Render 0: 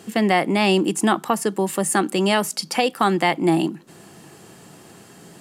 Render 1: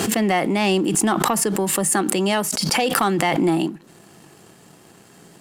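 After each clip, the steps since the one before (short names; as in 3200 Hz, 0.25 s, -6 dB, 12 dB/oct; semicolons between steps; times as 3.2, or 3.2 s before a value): sample leveller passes 1; backwards sustainer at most 21 dB/s; gain -4.5 dB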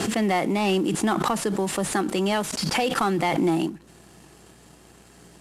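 CVSD 64 kbps; hum 60 Hz, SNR 34 dB; gain -3 dB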